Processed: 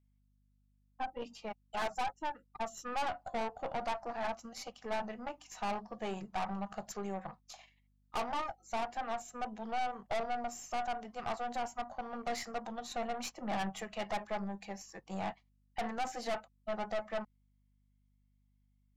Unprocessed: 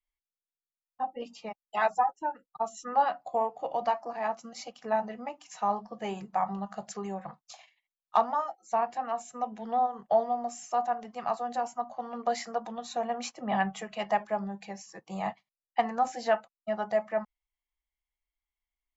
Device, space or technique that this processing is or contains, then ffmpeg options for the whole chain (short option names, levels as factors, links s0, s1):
valve amplifier with mains hum: -af "aeval=exprs='(tanh(39.8*val(0)+0.6)-tanh(0.6))/39.8':c=same,aeval=exprs='val(0)+0.000282*(sin(2*PI*50*n/s)+sin(2*PI*2*50*n/s)/2+sin(2*PI*3*50*n/s)/3+sin(2*PI*4*50*n/s)/4+sin(2*PI*5*50*n/s)/5)':c=same"